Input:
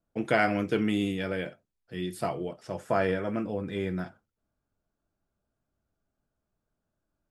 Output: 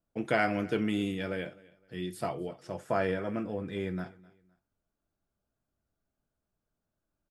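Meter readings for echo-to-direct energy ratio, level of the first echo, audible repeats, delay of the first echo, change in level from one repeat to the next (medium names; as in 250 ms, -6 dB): -22.0 dB, -22.5 dB, 2, 257 ms, -10.0 dB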